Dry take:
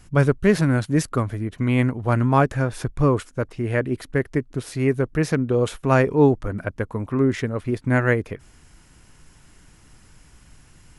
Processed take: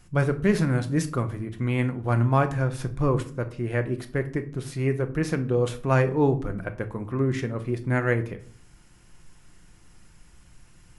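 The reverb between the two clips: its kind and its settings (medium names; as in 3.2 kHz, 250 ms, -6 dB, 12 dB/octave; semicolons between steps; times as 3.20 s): simulated room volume 440 m³, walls furnished, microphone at 0.87 m; trim -5 dB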